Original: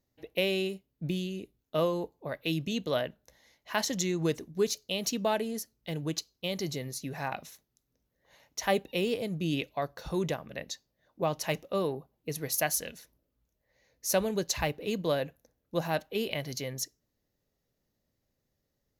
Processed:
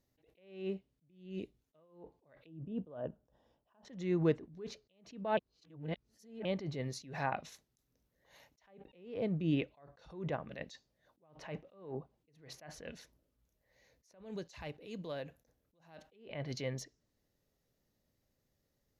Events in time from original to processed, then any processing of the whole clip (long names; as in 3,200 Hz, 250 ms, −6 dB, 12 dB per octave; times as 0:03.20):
0:02.46–0:03.85: moving average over 21 samples
0:05.37–0:06.45: reverse
0:14.11–0:16.12: downward compressor 2.5 to 1, threshold −43 dBFS
whole clip: treble cut that deepens with the level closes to 1,900 Hz, closed at −30 dBFS; level that may rise only so fast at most 110 dB per second